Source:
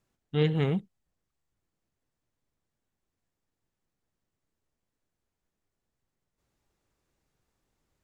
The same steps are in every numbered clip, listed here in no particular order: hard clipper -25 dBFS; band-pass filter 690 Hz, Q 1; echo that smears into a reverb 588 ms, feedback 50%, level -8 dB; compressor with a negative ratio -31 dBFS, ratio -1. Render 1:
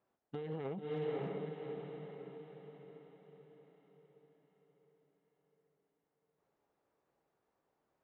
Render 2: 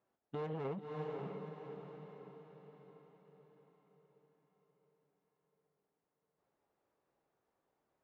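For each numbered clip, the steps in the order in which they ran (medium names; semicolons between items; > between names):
echo that smears into a reverb > compressor with a negative ratio > hard clipper > band-pass filter; hard clipper > echo that smears into a reverb > compressor with a negative ratio > band-pass filter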